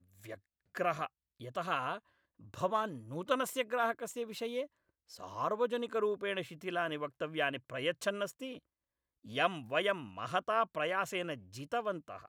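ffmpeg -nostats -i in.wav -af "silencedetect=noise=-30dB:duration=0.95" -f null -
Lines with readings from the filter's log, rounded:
silence_start: 8.25
silence_end: 9.37 | silence_duration: 1.12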